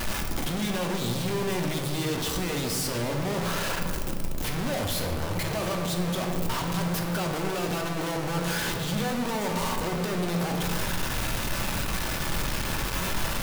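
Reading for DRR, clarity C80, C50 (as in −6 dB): 1.5 dB, 6.0 dB, 4.5 dB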